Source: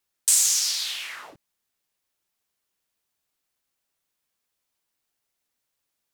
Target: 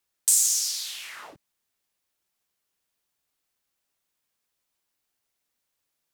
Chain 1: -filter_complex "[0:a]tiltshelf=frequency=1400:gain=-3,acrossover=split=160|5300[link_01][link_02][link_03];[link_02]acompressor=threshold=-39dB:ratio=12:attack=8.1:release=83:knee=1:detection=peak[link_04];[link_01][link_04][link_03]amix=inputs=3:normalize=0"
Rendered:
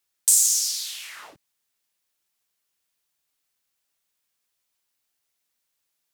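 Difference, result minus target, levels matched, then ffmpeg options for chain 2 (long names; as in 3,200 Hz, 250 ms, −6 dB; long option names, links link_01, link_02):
1,000 Hz band −3.5 dB
-filter_complex "[0:a]acrossover=split=160|5300[link_01][link_02][link_03];[link_02]acompressor=threshold=-39dB:ratio=12:attack=8.1:release=83:knee=1:detection=peak[link_04];[link_01][link_04][link_03]amix=inputs=3:normalize=0"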